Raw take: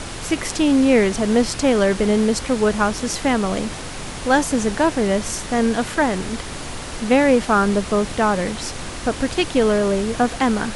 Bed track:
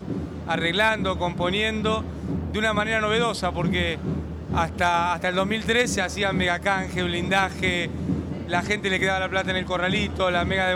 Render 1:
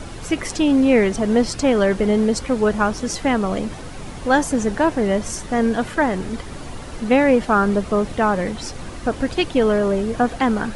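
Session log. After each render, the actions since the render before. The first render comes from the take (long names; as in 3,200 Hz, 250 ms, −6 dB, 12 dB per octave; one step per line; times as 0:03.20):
broadband denoise 9 dB, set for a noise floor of −31 dBFS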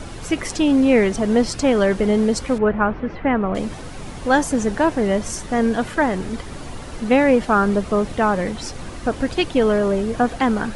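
0:02.58–0:03.55: low-pass filter 2,400 Hz 24 dB per octave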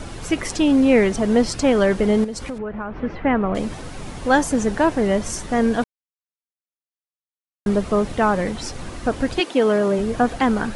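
0:02.24–0:02.99: downward compressor 5 to 1, threshold −26 dBFS
0:05.84–0:07.66: silence
0:09.39–0:09.98: high-pass filter 310 Hz → 120 Hz 24 dB per octave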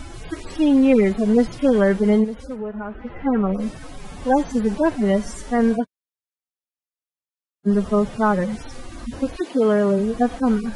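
harmonic-percussive split with one part muted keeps harmonic
dynamic equaliser 190 Hz, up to +3 dB, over −31 dBFS, Q 2.9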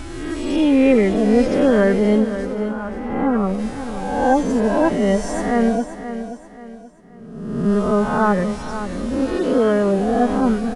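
peak hold with a rise ahead of every peak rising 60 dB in 1.15 s
repeating echo 530 ms, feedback 35%, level −11 dB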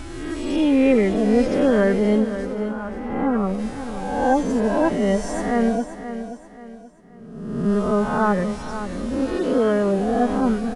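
level −2.5 dB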